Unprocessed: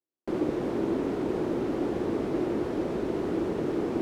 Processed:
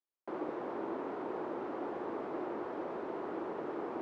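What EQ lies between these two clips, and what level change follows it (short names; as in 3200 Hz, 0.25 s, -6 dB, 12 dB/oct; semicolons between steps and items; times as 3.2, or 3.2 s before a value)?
band-pass 1000 Hz, Q 1.3; -1.0 dB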